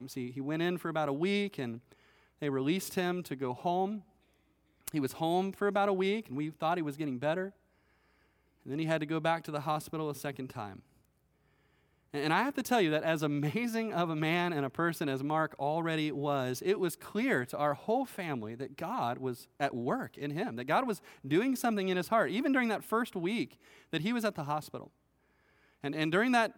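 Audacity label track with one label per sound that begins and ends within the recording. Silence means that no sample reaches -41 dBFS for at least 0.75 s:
4.880000	7.490000	sound
8.660000	10.790000	sound
12.140000	24.870000	sound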